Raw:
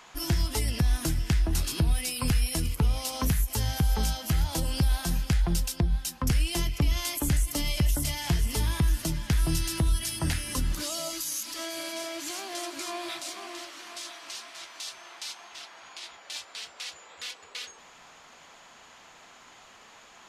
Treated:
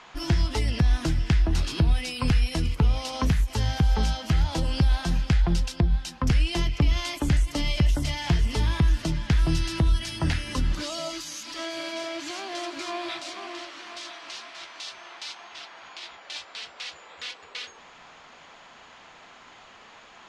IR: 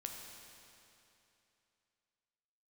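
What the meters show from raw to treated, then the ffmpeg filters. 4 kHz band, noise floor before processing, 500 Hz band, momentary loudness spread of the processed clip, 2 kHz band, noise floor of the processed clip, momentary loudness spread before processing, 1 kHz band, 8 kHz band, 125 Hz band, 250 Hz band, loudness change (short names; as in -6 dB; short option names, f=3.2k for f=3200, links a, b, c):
+1.5 dB, -53 dBFS, +3.5 dB, 14 LU, +3.5 dB, -50 dBFS, 12 LU, +3.5 dB, -6.5 dB, +3.5 dB, +3.5 dB, +3.0 dB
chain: -af "lowpass=4.5k,volume=3.5dB"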